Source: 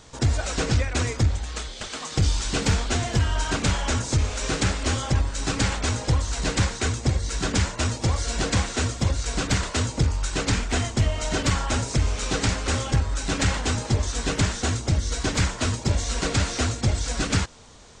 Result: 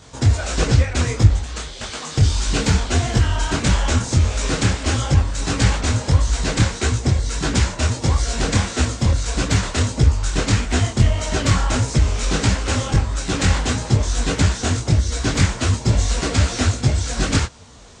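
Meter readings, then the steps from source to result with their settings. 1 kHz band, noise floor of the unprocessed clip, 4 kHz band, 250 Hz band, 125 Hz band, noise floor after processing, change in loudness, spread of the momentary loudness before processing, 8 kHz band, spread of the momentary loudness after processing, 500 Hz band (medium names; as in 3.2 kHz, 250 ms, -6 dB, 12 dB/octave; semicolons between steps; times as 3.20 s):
+3.5 dB, -37 dBFS, +3.5 dB, +5.0 dB, +6.5 dB, -33 dBFS, +5.5 dB, 3 LU, +3.5 dB, 4 LU, +4.0 dB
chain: high-pass 40 Hz; bass shelf 180 Hz +4.5 dB; detune thickener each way 55 cents; trim +7 dB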